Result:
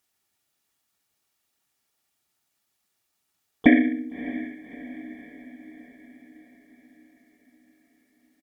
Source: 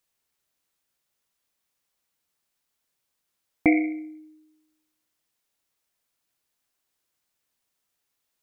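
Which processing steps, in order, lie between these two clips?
pitch-shifted copies added −4 semitones 0 dB, −3 semitones −2 dB, +7 semitones −15 dB
notch comb filter 520 Hz
feedback delay with all-pass diffusion 618 ms, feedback 55%, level −14.5 dB

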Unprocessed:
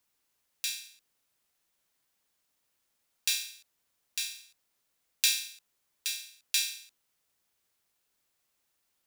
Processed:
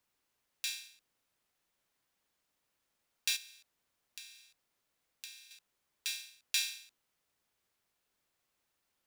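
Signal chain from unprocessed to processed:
high-shelf EQ 4,200 Hz −7 dB
0:03.36–0:05.51: downward compressor 10 to 1, threshold −46 dBFS, peak gain reduction 21 dB

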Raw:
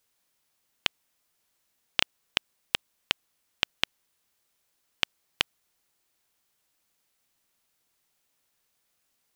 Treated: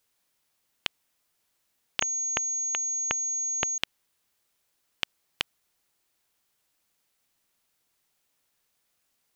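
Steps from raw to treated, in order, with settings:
brickwall limiter −5 dBFS, peak gain reduction 4 dB
0:02.01–0:03.78: switching amplifier with a slow clock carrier 6,600 Hz

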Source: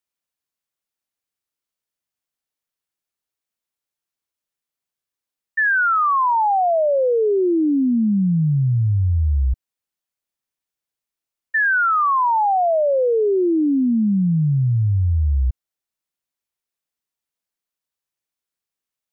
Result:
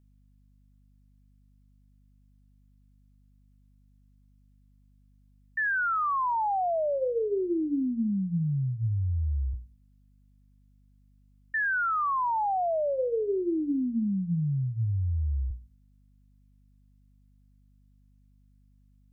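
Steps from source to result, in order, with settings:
brickwall limiter −22 dBFS, peak gain reduction 8 dB
mains hum 50 Hz, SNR 30 dB
mains-hum notches 60/120/180/240/300/360/420/480/540 Hz
level −2 dB

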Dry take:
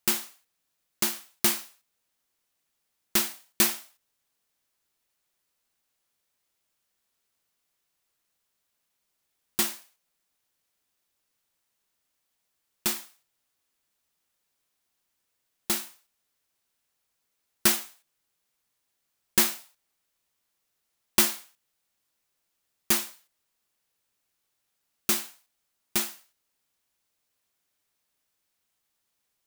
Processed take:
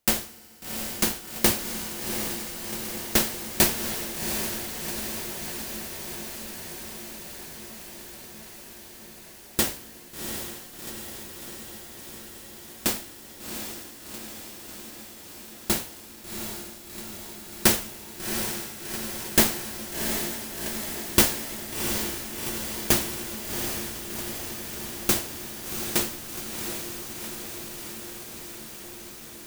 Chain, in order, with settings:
in parallel at −7 dB: sample-rate reduction 1,300 Hz, jitter 0%
on the sum: feedback delay with all-pass diffusion 738 ms, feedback 76%, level −6 dB
feedback delay network reverb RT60 3.2 s, high-frequency decay 1×, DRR 18.5 dB
level +1.5 dB

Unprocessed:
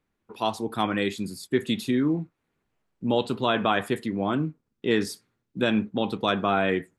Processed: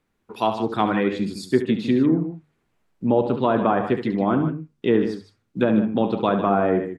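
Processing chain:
treble cut that deepens with the level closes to 1,000 Hz, closed at −19.5 dBFS
mains-hum notches 50/100/150 Hz
loudspeakers that aren't time-aligned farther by 24 metres −10 dB, 52 metres −11 dB
level +5 dB

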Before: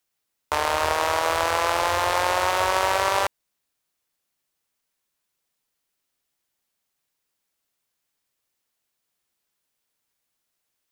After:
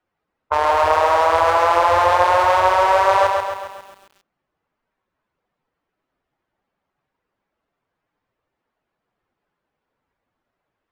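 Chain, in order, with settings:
expanding power law on the bin magnitudes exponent 1.6
low-pass that shuts in the quiet parts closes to 1,300 Hz, open at −22.5 dBFS
boost into a limiter +17 dB
feedback echo at a low word length 135 ms, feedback 55%, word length 7 bits, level −4 dB
level −5 dB

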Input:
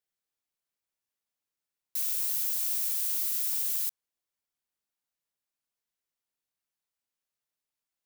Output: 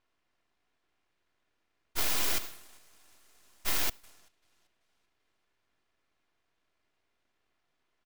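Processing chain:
compressor on every frequency bin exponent 0.6
0:02.38–0:03.65: guitar amp tone stack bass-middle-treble 6-0-2
on a send: repeating echo 387 ms, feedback 52%, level −15 dB
on the sum: low-pass that shuts in the quiet parts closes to 1,000 Hz, open at −26.5 dBFS
in parallel at −1 dB: downward compressor, threshold −39 dBFS, peak gain reduction 10.5 dB
on the sum: comb filter 2.9 ms, depth 95%
full-wave rectification

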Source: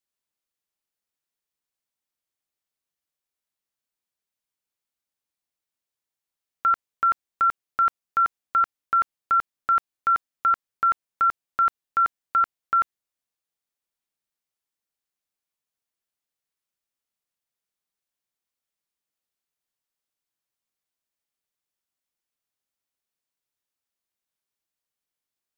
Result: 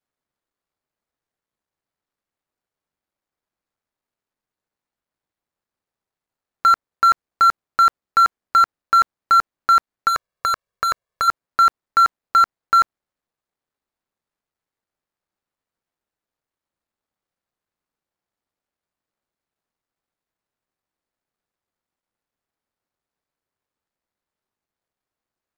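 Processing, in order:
running median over 15 samples
0:10.08–0:11.28: comb filter 1.8 ms, depth 75%
level +8 dB

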